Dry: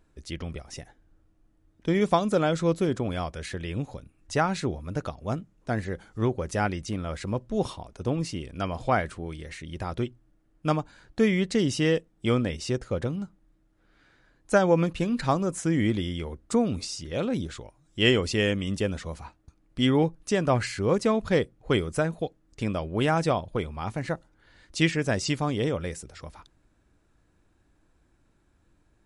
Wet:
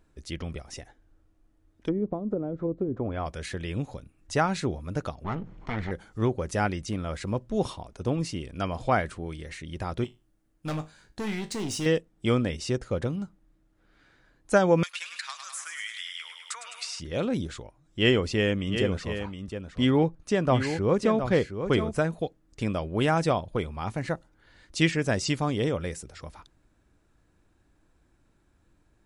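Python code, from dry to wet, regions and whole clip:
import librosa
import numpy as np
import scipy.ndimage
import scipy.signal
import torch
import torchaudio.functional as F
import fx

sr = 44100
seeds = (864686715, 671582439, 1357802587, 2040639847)

y = fx.chain(x, sr, fx.env_lowpass_down(base_hz=320.0, full_db=-20.0),
    fx.peak_eq(hz=160.0, db=-8.0, octaves=0.56), at=(0.74, 3.26))
y = fx.chain(y, sr, fx.lower_of_two(delay_ms=0.93),
    fx.lowpass(hz=3000.0, slope=12),
    fx.env_flatten(amount_pct=50), at=(5.24, 5.91))
y = fx.chain(y, sr, fx.high_shelf(hz=5100.0, db=10.0),
    fx.overload_stage(gain_db=24.0),
    fx.comb_fb(f0_hz=52.0, decay_s=0.26, harmonics='all', damping=0.0, mix_pct=70), at=(10.04, 11.86))
y = fx.chain(y, sr, fx.highpass(hz=1400.0, slope=24),
    fx.echo_feedback(ms=102, feedback_pct=52, wet_db=-9.0),
    fx.band_squash(depth_pct=100), at=(14.83, 17.0))
y = fx.chain(y, sr, fx.high_shelf(hz=4900.0, db=-8.5),
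    fx.echo_single(ms=716, db=-8.5), at=(17.62, 21.98))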